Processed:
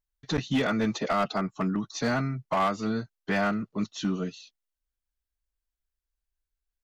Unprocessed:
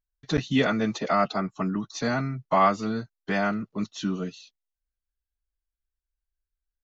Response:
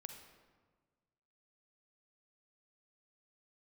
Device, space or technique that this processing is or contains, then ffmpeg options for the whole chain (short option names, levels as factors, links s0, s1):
limiter into clipper: -af "alimiter=limit=0.188:level=0:latency=1:release=195,asoftclip=type=hard:threshold=0.1"